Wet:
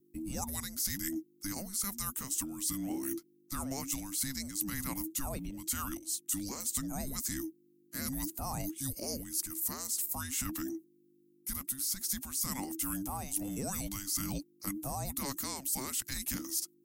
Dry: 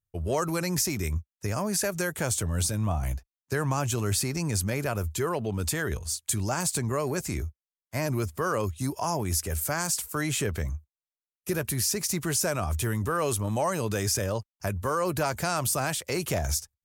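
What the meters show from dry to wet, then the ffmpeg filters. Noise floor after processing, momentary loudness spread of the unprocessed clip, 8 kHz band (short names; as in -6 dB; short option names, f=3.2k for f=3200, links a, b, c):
-67 dBFS, 6 LU, -4.5 dB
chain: -af "aemphasis=mode=production:type=75fm,areverse,acompressor=threshold=-26dB:ratio=6,areverse,aeval=exprs='val(0)+0.00112*(sin(2*PI*50*n/s)+sin(2*PI*2*50*n/s)/2+sin(2*PI*3*50*n/s)/3+sin(2*PI*4*50*n/s)/4+sin(2*PI*5*50*n/s)/5)':c=same,afreqshift=-400,volume=-6.5dB"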